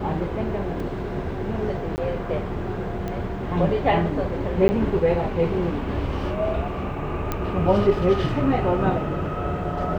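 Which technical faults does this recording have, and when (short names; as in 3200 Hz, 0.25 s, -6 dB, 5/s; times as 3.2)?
0.8 gap 3 ms
1.96–1.98 gap 19 ms
3.08 pop -17 dBFS
4.68–4.69 gap 10 ms
7.32 pop -11 dBFS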